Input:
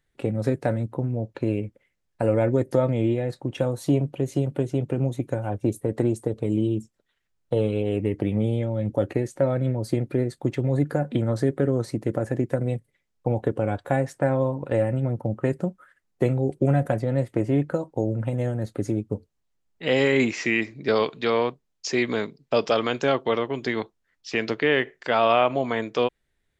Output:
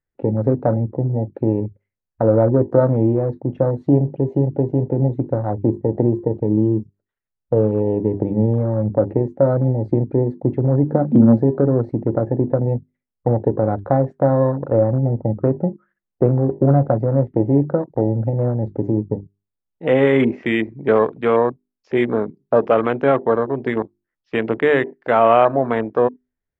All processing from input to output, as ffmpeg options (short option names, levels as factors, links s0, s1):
-filter_complex "[0:a]asettb=1/sr,asplit=3[s0][s1][s2];[s0]atrim=end=10.884[s3];[s1]atrim=start=10.88:end=11.38,asetpts=PTS-STARTPTS,afade=t=in:d=0.004:c=qsin,afade=t=out:st=0.496:d=0.004:c=qsin,aeval=exprs='val(0)*gte(abs(val(0)),0.00422)':c=same,equalizer=f=230:w=3:g=12.5[s4];[s2]atrim=start=11.376[s5];[s3][s4]acrossfade=d=0.004:c1=hsin:c2=qsin[s6];[s6][s5]acrossfade=d=0.004:c1=qsin:c2=hsin,lowpass=1600,bandreject=f=50:t=h:w=6,bandreject=f=100:t=h:w=6,bandreject=f=150:t=h:w=6,bandreject=f=200:t=h:w=6,bandreject=f=250:t=h:w=6,bandreject=f=300:t=h:w=6,bandreject=f=350:t=h:w=6,bandreject=f=400:t=h:w=6,afwtdn=0.0224,volume=2.24"